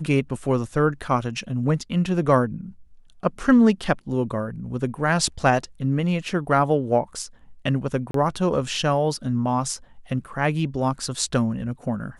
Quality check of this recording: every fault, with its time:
8.11–8.14 gap 33 ms

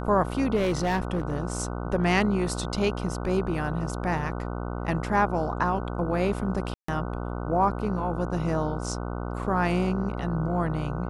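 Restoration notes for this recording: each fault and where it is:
buzz 60 Hz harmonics 25 -32 dBFS
0.55–1.33 clipped -21 dBFS
6.74–6.88 gap 0.144 s

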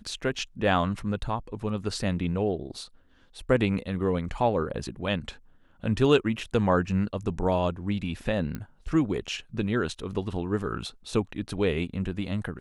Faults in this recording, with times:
8.55 pop -20 dBFS

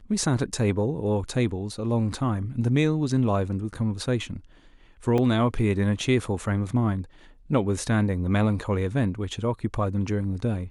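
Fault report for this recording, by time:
5.18 gap 3 ms

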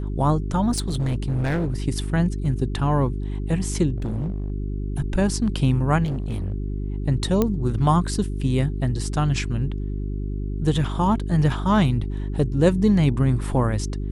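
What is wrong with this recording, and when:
hum 50 Hz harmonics 8 -27 dBFS
0.71–1.74 clipped -19.5 dBFS
3.96–4.5 clipped -22.5 dBFS
6.04–6.54 clipped -22.5 dBFS
7.42 pop -8 dBFS

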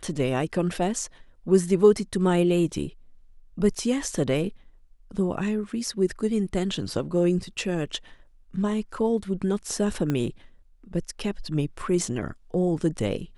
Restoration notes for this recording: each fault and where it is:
10.1 pop -14 dBFS

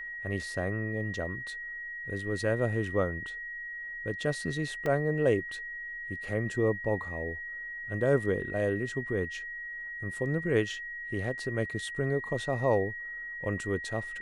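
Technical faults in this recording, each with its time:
tone 1900 Hz -37 dBFS
4.86 gap 2.1 ms

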